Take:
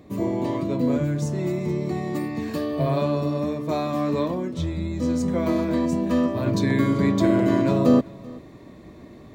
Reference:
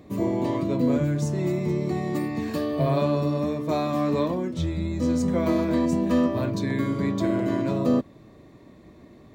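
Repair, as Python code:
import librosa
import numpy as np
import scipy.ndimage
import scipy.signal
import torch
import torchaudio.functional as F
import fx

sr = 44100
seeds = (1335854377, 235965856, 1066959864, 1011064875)

y = fx.fix_echo_inverse(x, sr, delay_ms=386, level_db=-22.5)
y = fx.gain(y, sr, db=fx.steps((0.0, 0.0), (6.46, -5.0)))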